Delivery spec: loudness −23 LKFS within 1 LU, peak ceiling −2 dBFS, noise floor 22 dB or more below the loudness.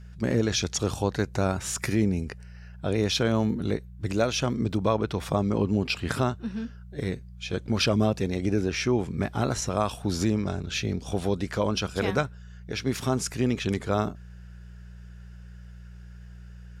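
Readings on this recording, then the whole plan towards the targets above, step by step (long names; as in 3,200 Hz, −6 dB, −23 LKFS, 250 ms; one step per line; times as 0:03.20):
mains hum 60 Hz; hum harmonics up to 180 Hz; level of the hum −42 dBFS; integrated loudness −27.5 LKFS; sample peak −9.0 dBFS; target loudness −23.0 LKFS
→ hum removal 60 Hz, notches 3
level +4.5 dB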